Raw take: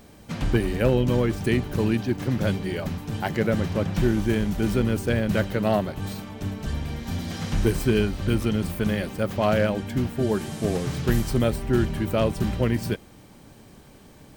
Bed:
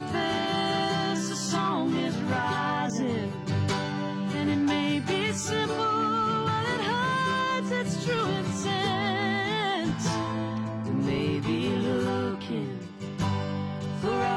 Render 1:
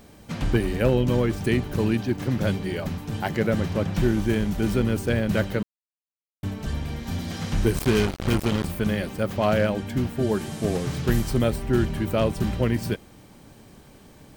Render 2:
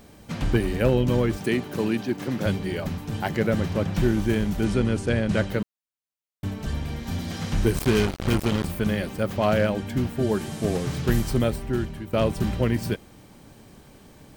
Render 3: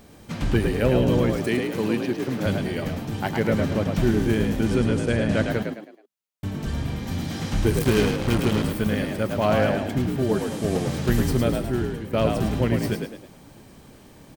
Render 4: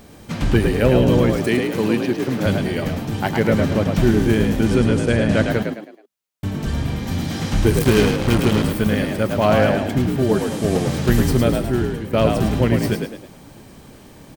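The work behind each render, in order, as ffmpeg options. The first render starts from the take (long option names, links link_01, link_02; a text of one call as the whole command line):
ffmpeg -i in.wav -filter_complex "[0:a]asettb=1/sr,asplit=3[link_01][link_02][link_03];[link_01]atrim=end=7.774[link_04];[link_02]atrim=start=7.77:end=8.65,asetpts=PTS-STARTPTS,afade=type=in:duration=0.004:curve=qsin,afade=type=out:start_time=0.876:duration=0.004:curve=qsin,acrusher=bits=3:mix=0:aa=0.5[link_05];[link_03]atrim=start=8.646[link_06];[link_04][link_05]acrossfade=duration=0.004:curve1=hsin:curve2=qsin[link_07];[link_07][link_06]acrossfade=duration=0.004:curve1=qsin:curve2=hsin,asplit=3[link_08][link_09][link_10];[link_08]atrim=end=5.63,asetpts=PTS-STARTPTS,afade=type=out:start_time=5.626:duration=0.004:curve=hsin[link_11];[link_09]atrim=start=5.63:end=6.43,asetpts=PTS-STARTPTS,volume=0[link_12];[link_10]atrim=start=6.43,asetpts=PTS-STARTPTS,afade=type=in:duration=0.004:curve=hsin[link_13];[link_11][link_12][link_13]concat=n=3:v=0:a=1" out.wav
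ffmpeg -i in.wav -filter_complex "[0:a]asettb=1/sr,asplit=3[link_01][link_02][link_03];[link_01]atrim=end=1.374[link_04];[link_02]atrim=start=1.37:end=2.46,asetpts=PTS-STARTPTS,afade=type=in:duration=0.004:curve=qsin,afade=type=out:start_time=1.086:duration=0.004:curve=qsin,highpass=180[link_05];[link_03]atrim=start=2.456[link_06];[link_04][link_05]acrossfade=duration=0.004:curve1=hsin:curve2=qsin[link_07];[link_07][link_06]acrossfade=duration=0.004:curve1=qsin:curve2=hsin,asettb=1/sr,asplit=3[link_08][link_09][link_10];[link_08]atrim=end=4.644[link_11];[link_09]atrim=start=4.64:end=5.49,asetpts=PTS-STARTPTS,afade=type=in:duration=0.004:curve=qsin,afade=type=out:start_time=0.846:duration=0.004:curve=qsin,lowpass=frequency=9700:width=0.5412,lowpass=frequency=9700:width=1.3066[link_12];[link_10]atrim=start=5.486[link_13];[link_11][link_12]acrossfade=duration=0.004:curve1=hsin:curve2=qsin[link_14];[link_14][link_13]acrossfade=duration=0.004:curve1=qsin:curve2=hsin,asplit=2[link_15][link_16];[link_15]atrim=end=12.13,asetpts=PTS-STARTPTS,afade=type=out:start_time=11.36:duration=0.77:silence=0.237137[link_17];[link_16]atrim=start=12.13,asetpts=PTS-STARTPTS,afade=type=in:duration=0.004:curve=hsin:silence=0.237137[link_18];[link_17][link_18]concat=n=2:v=0:a=1" out.wav
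ffmpeg -i in.wav -filter_complex "[0:a]asplit=5[link_01][link_02][link_03][link_04][link_05];[link_02]adelay=107,afreqshift=50,volume=-5dB[link_06];[link_03]adelay=214,afreqshift=100,volume=-13.9dB[link_07];[link_04]adelay=321,afreqshift=150,volume=-22.7dB[link_08];[link_05]adelay=428,afreqshift=200,volume=-31.6dB[link_09];[link_01][link_06][link_07][link_08][link_09]amix=inputs=5:normalize=0" out.wav
ffmpeg -i in.wav -af "volume=5dB" out.wav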